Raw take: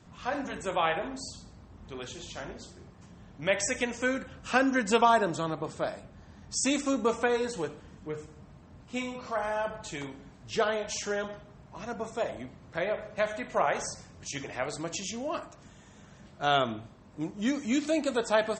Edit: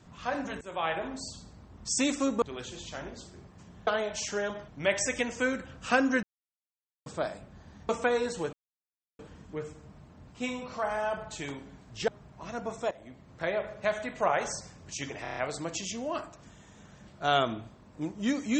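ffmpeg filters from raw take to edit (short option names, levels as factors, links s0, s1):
-filter_complex "[0:a]asplit=17[s0][s1][s2][s3][s4][s5][s6][s7][s8][s9][s10][s11][s12][s13][s14][s15][s16];[s0]atrim=end=0.61,asetpts=PTS-STARTPTS,afade=t=out:st=0.606:d=0.004:c=hsin:silence=0.158489[s17];[s1]atrim=start=0.61:end=1.852,asetpts=PTS-STARTPTS,afade=t=in:d=0.58:c=qsin:silence=0.158489[s18];[s2]atrim=start=6.508:end=7.082[s19];[s3]atrim=start=1.848:end=3.302[s20];[s4]atrim=start=10.608:end=11.422[s21];[s5]atrim=start=3.298:end=4.85,asetpts=PTS-STARTPTS,afade=t=out:st=1.548:d=0.004:c=hsin[s22];[s6]atrim=start=4.85:end=5.68,asetpts=PTS-STARTPTS,volume=0[s23];[s7]atrim=start=5.68:end=6.512,asetpts=PTS-STARTPTS,afade=t=in:d=0.004:c=hsin[s24];[s8]atrim=start=7.078:end=7.72,asetpts=PTS-STARTPTS,afade=t=out:st=0.638:d=0.004:c=hsin,apad=pad_dur=0.66[s25];[s9]atrim=start=7.72:end=10.612,asetpts=PTS-STARTPTS,afade=t=in:d=0.004:c=hsin[s26];[s10]atrim=start=11.418:end=12.25,asetpts=PTS-STARTPTS,afade=t=out:st=0.828:d=0.004:c=hsin:silence=0.133352[s27];[s11]atrim=start=12.25:end=14.592,asetpts=PTS-STARTPTS,afade=t=in:d=0.51:silence=0.133352[s28];[s12]atrim=start=14.558:end=14.592[s29];[s13]atrim=start=14.558:end=14.592[s30];[s14]atrim=start=14.558:end=14.592[s31];[s15]atrim=start=14.558:end=14.592[s32];[s16]atrim=start=14.558[s33];[s17][s18]concat=n=2:v=0:a=1[s34];[s34][s19]acrossfade=d=0.004:c1=hsin:c2=hsin[s35];[s35][s20]acrossfade=d=0.004:c1=hsin:c2=hsin[s36];[s36][s21]acrossfade=d=0.004:c1=hsin:c2=hsin[s37];[s22][s23][s24]concat=n=3:v=0:a=1[s38];[s37][s38]acrossfade=d=0.004:c1=hsin:c2=hsin[s39];[s25][s26]concat=n=2:v=0:a=1[s40];[s39][s40]acrossfade=d=0.004:c1=hsin:c2=hsin[s41];[s27][s28]concat=n=2:v=0:a=1[s42];[s41][s42]acrossfade=d=0.004:c1=hsin:c2=hsin[s43];[s43][s29]acrossfade=d=0.004:c1=hsin:c2=hsin[s44];[s44][s30]acrossfade=d=0.004:c1=hsin:c2=hsin[s45];[s45][s31]acrossfade=d=0.004:c1=hsin:c2=hsin[s46];[s46][s32]acrossfade=d=0.004:c1=hsin:c2=hsin[s47];[s47][s33]acrossfade=d=0.004:c1=hsin:c2=hsin"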